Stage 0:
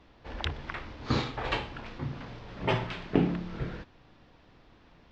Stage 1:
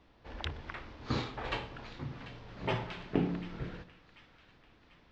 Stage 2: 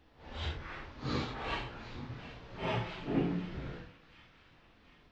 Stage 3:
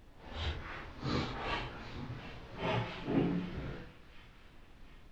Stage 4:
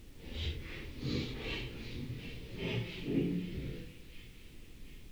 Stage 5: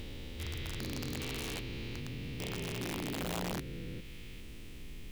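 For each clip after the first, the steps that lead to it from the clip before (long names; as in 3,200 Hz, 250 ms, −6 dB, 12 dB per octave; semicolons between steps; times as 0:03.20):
echo with a time of its own for lows and highs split 1,300 Hz, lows 95 ms, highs 741 ms, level −14.5 dB; level −5.5 dB
random phases in long frames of 200 ms
background noise brown −55 dBFS
flat-topped bell 1,000 Hz −15.5 dB; in parallel at +3 dB: downward compressor, threshold −45 dBFS, peak gain reduction 18 dB; on the sum: bit reduction 10 bits; level −3 dB
spectrum averaged block by block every 400 ms; downward compressor 1.5 to 1, threshold −49 dBFS, peak gain reduction 5 dB; wrap-around overflow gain 37.5 dB; level +7 dB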